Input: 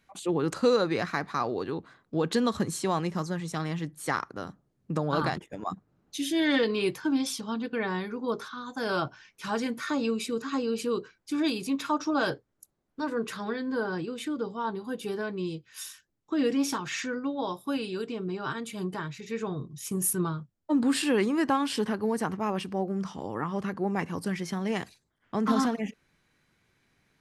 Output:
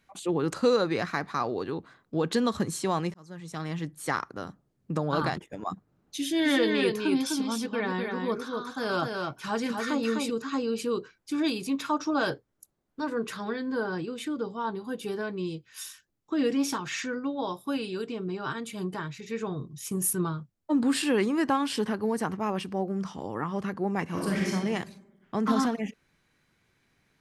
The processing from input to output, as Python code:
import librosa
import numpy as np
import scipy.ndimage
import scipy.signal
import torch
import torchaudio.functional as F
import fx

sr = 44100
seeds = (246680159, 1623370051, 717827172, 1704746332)

y = fx.echo_single(x, sr, ms=253, db=-4.0, at=(6.44, 10.29), fade=0.02)
y = fx.reverb_throw(y, sr, start_s=24.06, length_s=0.47, rt60_s=1.1, drr_db=-3.5)
y = fx.edit(y, sr, fx.fade_in_span(start_s=3.14, length_s=0.67), tone=tone)